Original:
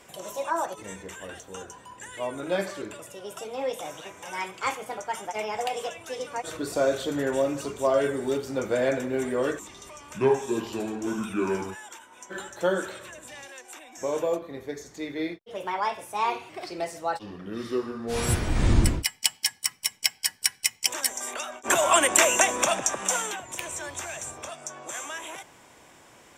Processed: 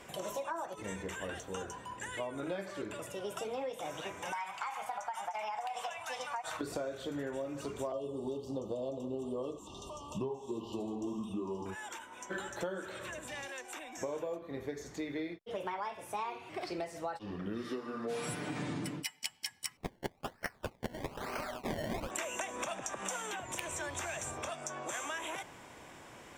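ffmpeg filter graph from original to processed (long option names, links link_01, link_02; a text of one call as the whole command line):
ffmpeg -i in.wav -filter_complex "[0:a]asettb=1/sr,asplit=3[link_01][link_02][link_03];[link_01]atrim=end=4.324[link_04];[link_02]atrim=start=4.32:end=6.61,asetpts=PTS-STARTPTS,afade=type=in:duration=0.004:curve=qsin,afade=type=out:start_time=2.286:duration=0.004:curve=qsin,lowshelf=frequency=570:width_type=q:width=3:gain=-12,bandreject=frequency=3300:width=28,acompressor=threshold=-29dB:ratio=6:attack=3.2:release=140:knee=1:detection=peak[link_05];[link_03]atrim=start=6.606[link_06];[link_04][link_05]acrossfade=duration=0.004:curve1=hsin:curve2=qsin[link_07];[link_07][link_06]acrossfade=duration=0.004:curve1=qsin:curve2=hsin,asettb=1/sr,asplit=3[link_08][link_09][link_10];[link_08]atrim=end=7.924[link_11];[link_09]atrim=start=7.92:end=11.66,asetpts=PTS-STARTPTS,afade=type=in:duration=0.004:curve=qsin,afade=type=out:start_time=3.736:duration=0.004:curve=qsin,asuperstop=centerf=1800:order=20:qfactor=1.2,highshelf=frequency=8000:gain=-8.5[link_12];[link_10]atrim=start=11.656[link_13];[link_11][link_12]acrossfade=duration=0.004:curve1=hsin:curve2=qsin[link_14];[link_14][link_13]acrossfade=duration=0.004:curve1=qsin:curve2=hsin,asettb=1/sr,asplit=3[link_15][link_16][link_17];[link_15]atrim=end=17.634[link_18];[link_16]atrim=start=17.63:end=19.22,asetpts=PTS-STARTPTS,afade=type=in:duration=0.004:curve=qsin,afade=type=out:start_time=1.586:duration=0.004:curve=qsin,highpass=frequency=160:width=0.5412,highpass=frequency=160:width=1.3066,aecho=1:1:6.8:0.59,atrim=end_sample=70119[link_19];[link_17]atrim=start=19.216[link_20];[link_18][link_19]acrossfade=duration=0.004:curve1=hsin:curve2=qsin[link_21];[link_21][link_20]acrossfade=duration=0.004:curve1=qsin:curve2=hsin,asettb=1/sr,asplit=3[link_22][link_23][link_24];[link_22]atrim=end=19.774[link_25];[link_23]atrim=start=19.77:end=22.11,asetpts=PTS-STARTPTS,afade=type=in:duration=0.004:curve=qsin,afade=type=out:start_time=2.336:duration=0.004:curve=qsin,highshelf=frequency=5800:gain=-9,acrusher=samples=24:mix=1:aa=0.000001:lfo=1:lforange=24:lforate=1.1[link_26];[link_24]atrim=start=22.106[link_27];[link_25][link_26]acrossfade=duration=0.004:curve1=hsin:curve2=qsin[link_28];[link_28][link_27]acrossfade=duration=0.004:curve1=qsin:curve2=hsin,bass=frequency=250:gain=2,treble=frequency=4000:gain=-5,acompressor=threshold=-36dB:ratio=12,volume=1dB" out.wav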